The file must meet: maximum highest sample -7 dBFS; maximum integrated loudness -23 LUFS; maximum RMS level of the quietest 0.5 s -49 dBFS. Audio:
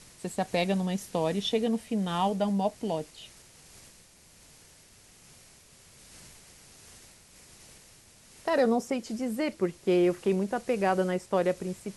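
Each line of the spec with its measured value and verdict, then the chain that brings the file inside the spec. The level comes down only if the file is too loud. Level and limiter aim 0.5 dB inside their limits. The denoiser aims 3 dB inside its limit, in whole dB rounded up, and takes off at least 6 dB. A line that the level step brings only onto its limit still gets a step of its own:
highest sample -13.5 dBFS: pass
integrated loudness -29.0 LUFS: pass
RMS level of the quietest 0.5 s -56 dBFS: pass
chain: none needed

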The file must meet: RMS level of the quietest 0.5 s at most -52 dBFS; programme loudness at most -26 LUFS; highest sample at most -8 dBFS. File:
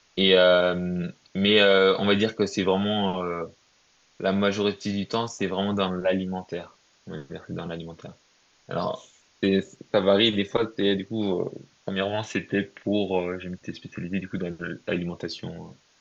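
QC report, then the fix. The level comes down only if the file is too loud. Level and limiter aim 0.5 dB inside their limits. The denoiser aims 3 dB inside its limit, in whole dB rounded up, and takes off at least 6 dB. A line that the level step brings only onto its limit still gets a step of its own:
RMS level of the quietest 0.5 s -63 dBFS: pass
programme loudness -25.0 LUFS: fail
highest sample -7.0 dBFS: fail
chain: trim -1.5 dB

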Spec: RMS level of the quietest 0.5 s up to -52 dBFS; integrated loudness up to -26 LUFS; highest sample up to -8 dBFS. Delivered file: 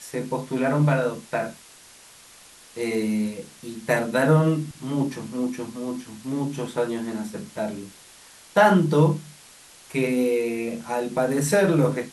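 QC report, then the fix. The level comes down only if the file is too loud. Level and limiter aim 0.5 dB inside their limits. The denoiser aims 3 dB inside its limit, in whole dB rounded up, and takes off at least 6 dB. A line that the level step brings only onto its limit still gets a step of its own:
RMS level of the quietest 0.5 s -49 dBFS: fail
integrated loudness -24.0 LUFS: fail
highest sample -6.0 dBFS: fail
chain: noise reduction 6 dB, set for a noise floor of -49 dBFS; trim -2.5 dB

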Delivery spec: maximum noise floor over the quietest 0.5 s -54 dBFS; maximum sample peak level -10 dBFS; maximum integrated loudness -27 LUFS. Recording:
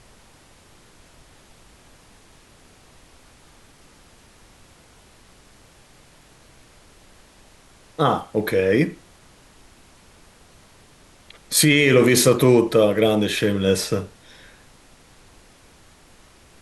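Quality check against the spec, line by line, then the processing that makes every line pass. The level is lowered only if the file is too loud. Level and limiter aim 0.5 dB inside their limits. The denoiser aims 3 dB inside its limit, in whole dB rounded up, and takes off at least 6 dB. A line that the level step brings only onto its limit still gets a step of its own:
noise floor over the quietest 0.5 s -51 dBFS: fail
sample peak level -5.5 dBFS: fail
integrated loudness -18.0 LUFS: fail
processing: trim -9.5 dB

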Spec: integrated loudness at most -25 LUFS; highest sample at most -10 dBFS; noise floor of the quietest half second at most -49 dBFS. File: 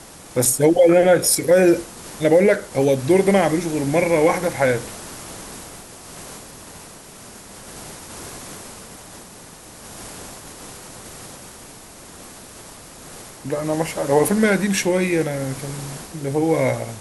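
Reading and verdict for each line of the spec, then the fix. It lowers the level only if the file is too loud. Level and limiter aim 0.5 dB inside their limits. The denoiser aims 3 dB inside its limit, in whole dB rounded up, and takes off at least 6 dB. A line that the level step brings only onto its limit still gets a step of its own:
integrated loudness -18.5 LUFS: fail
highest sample -5.0 dBFS: fail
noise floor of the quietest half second -41 dBFS: fail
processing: noise reduction 6 dB, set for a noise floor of -41 dBFS; trim -7 dB

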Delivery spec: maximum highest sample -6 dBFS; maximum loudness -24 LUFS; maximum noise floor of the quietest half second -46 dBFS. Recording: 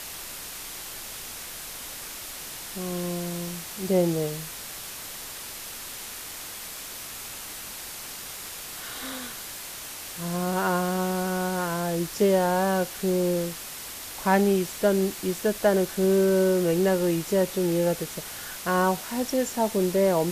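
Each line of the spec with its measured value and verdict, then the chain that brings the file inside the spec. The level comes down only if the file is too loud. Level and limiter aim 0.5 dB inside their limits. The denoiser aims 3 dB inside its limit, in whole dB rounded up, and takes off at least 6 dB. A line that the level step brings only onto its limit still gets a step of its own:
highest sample -9.0 dBFS: pass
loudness -27.5 LUFS: pass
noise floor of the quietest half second -38 dBFS: fail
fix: noise reduction 11 dB, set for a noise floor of -38 dBFS

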